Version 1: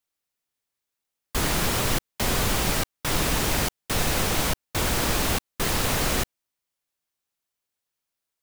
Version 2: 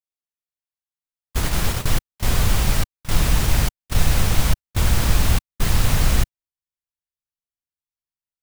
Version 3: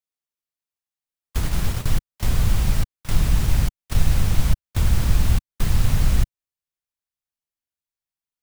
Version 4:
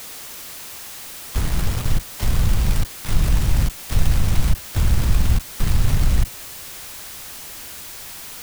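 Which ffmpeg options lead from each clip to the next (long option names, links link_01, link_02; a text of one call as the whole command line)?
ffmpeg -i in.wav -af "asubboost=boost=5:cutoff=150,agate=range=-16dB:threshold=-19dB:ratio=16:detection=peak" out.wav
ffmpeg -i in.wav -filter_complex "[0:a]acrossover=split=240[link_01][link_02];[link_02]acompressor=threshold=-33dB:ratio=3[link_03];[link_01][link_03]amix=inputs=2:normalize=0" out.wav
ffmpeg -i in.wav -af "aeval=exprs='val(0)+0.5*0.0473*sgn(val(0))':channel_layout=same" out.wav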